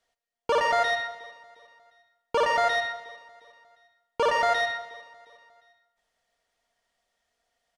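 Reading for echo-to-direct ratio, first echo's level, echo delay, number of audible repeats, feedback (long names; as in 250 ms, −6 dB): −22.0 dB, −23.0 dB, 357 ms, 2, 48%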